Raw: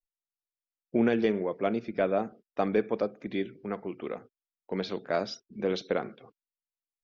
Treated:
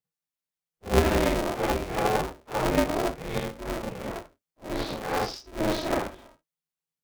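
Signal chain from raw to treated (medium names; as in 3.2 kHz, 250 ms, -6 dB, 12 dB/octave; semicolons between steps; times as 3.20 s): phase randomisation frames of 200 ms; polarity switched at an audio rate 160 Hz; trim +2.5 dB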